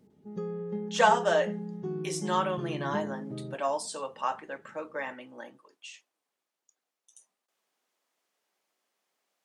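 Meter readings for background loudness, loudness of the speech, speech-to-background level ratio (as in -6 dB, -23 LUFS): -37.0 LUFS, -30.5 LUFS, 6.5 dB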